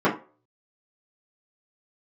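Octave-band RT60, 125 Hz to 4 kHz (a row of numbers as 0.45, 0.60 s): 0.30, 0.30, 0.40, 0.35, 0.30, 0.20 s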